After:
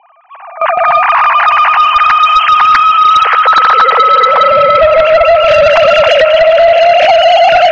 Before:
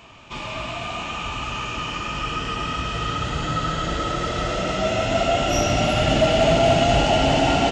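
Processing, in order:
three sine waves on the formant tracks
high-pass filter 470 Hz 12 dB per octave
noise gate with hold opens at −24 dBFS
low-pass that shuts in the quiet parts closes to 990 Hz, open at −12.5 dBFS
parametric band 1,400 Hz +3 dB 2 octaves
downward compressor 12 to 1, threshold −22 dBFS, peak gain reduction 15.5 dB
on a send: feedback delay with all-pass diffusion 621 ms, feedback 52%, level −11.5 dB
on the sum: sine wavefolder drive 7 dB, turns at −13 dBFS
boost into a limiter +21 dB
level −1 dB

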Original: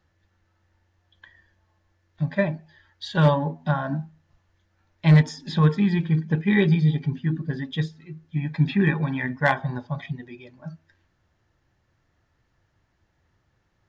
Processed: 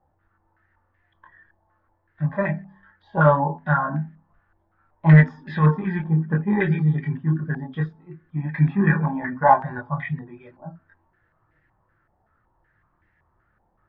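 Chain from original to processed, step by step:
multi-voice chorus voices 6, 0.18 Hz, delay 23 ms, depth 4.5 ms
hum removal 64.86 Hz, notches 4
low-pass on a step sequencer 5.3 Hz 830–1,900 Hz
level +2.5 dB

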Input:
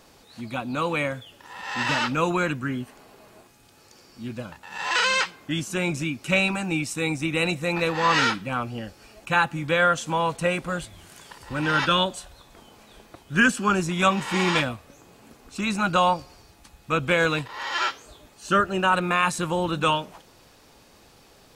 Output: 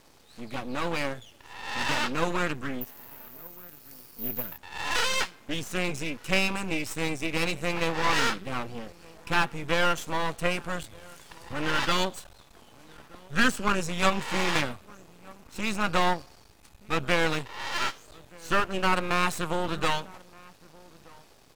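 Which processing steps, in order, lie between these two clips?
slap from a distant wall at 210 metres, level −23 dB
half-wave rectification
0:02.81–0:04.58: bad sample-rate conversion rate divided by 3×, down none, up zero stuff

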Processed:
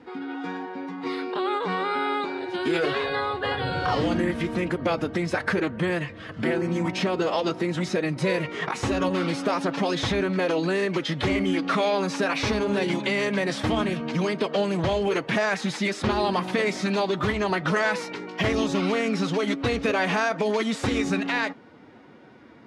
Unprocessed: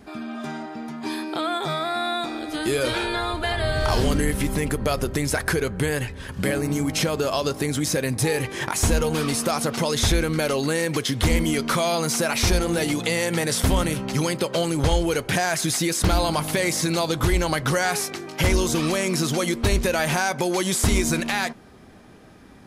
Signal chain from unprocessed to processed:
phase-vocoder pitch shift with formants kept +3 semitones
band-pass filter 160–3,300 Hz

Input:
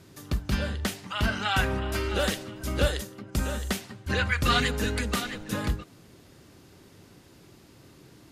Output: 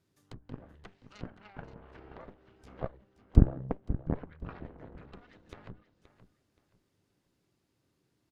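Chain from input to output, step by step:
0:03.36–0:04.15: spectral tilt −3 dB per octave
treble cut that deepens with the level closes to 740 Hz, closed at −23 dBFS
harmonic generator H 2 −8 dB, 3 −9 dB, 6 −37 dB, 8 −37 dB, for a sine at −6.5 dBFS
repeating echo 525 ms, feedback 27%, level −13.5 dB

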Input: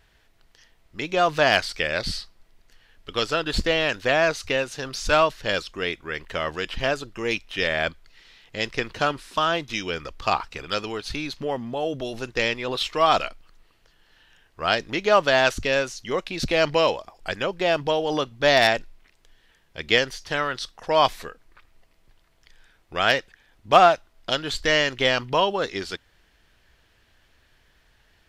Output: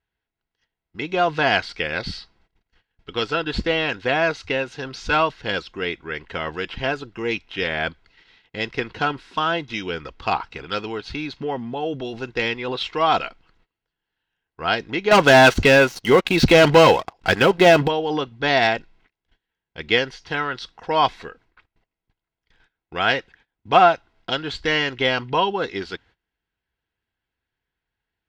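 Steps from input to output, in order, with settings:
noise gate −51 dBFS, range −22 dB
low-pass filter 3,800 Hz 12 dB per octave
0:15.11–0:17.88: leveller curve on the samples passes 3
notch comb filter 600 Hz
level +2.5 dB

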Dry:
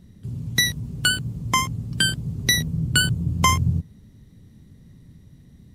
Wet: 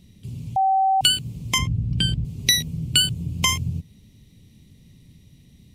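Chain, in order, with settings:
0:01.58–0:02.25: RIAA equalisation playback
downward compressor 1.5 to 1, threshold −24 dBFS, peak gain reduction 5 dB
high shelf with overshoot 2,000 Hz +7 dB, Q 3
0:00.56–0:01.01: beep over 769 Hz −13 dBFS
level −2.5 dB

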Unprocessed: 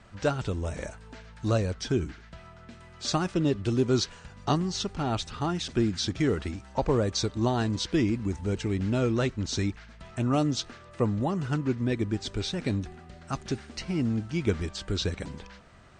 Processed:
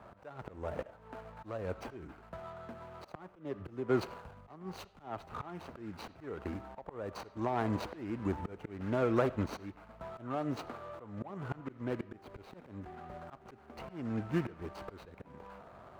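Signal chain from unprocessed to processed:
running median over 25 samples
three-way crossover with the lows and the highs turned down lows −12 dB, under 510 Hz, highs −14 dB, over 2,100 Hz
downward compressor 10 to 1, threshold −34 dBFS, peak gain reduction 10.5 dB
high-pass filter 97 Hz 6 dB per octave
volume swells 439 ms
convolution reverb RT60 0.45 s, pre-delay 36 ms, DRR 17 dB
0:03.12–0:05.40: multiband upward and downward expander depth 70%
level +10.5 dB

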